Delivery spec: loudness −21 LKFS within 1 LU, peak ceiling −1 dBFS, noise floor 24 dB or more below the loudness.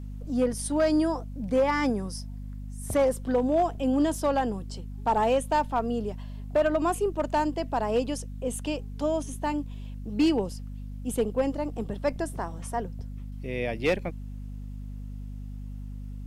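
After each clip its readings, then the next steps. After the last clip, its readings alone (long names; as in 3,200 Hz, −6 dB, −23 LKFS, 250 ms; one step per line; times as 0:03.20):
share of clipped samples 0.5%; peaks flattened at −17.0 dBFS; mains hum 50 Hz; hum harmonics up to 250 Hz; level of the hum −35 dBFS; integrated loudness −28.0 LKFS; sample peak −17.0 dBFS; target loudness −21.0 LKFS
→ clipped peaks rebuilt −17 dBFS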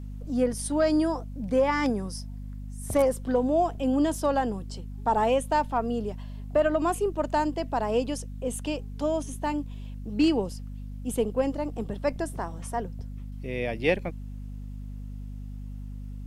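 share of clipped samples 0.0%; mains hum 50 Hz; hum harmonics up to 250 Hz; level of the hum −35 dBFS
→ mains-hum notches 50/100/150/200/250 Hz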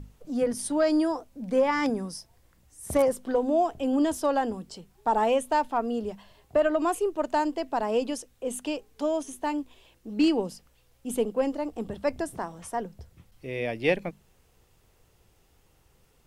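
mains hum none found; integrated loudness −28.0 LKFS; sample peak −9.5 dBFS; target loudness −21.0 LKFS
→ level +7 dB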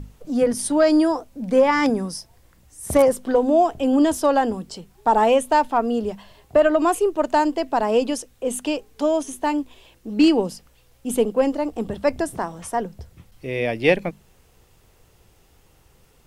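integrated loudness −21.0 LKFS; sample peak −2.5 dBFS; background noise floor −57 dBFS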